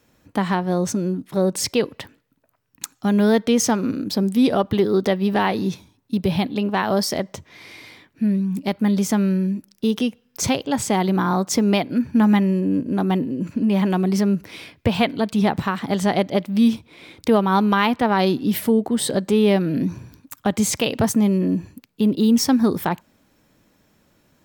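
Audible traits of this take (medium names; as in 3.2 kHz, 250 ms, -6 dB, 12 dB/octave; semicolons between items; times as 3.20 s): noise floor -63 dBFS; spectral tilt -5.5 dB/octave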